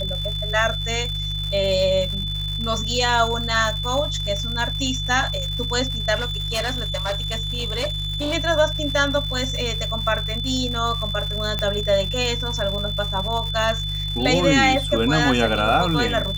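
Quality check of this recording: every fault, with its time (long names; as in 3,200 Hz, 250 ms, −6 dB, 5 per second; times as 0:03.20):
surface crackle 210 per second −28 dBFS
mains hum 50 Hz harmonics 3 −28 dBFS
whistle 3,500 Hz −27 dBFS
0:06.15–0:08.35: clipping −20 dBFS
0:11.59: click −10 dBFS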